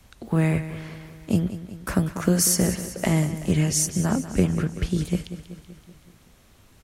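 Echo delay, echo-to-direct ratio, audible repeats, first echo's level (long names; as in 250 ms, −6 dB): 190 ms, −11.0 dB, 5, −13.0 dB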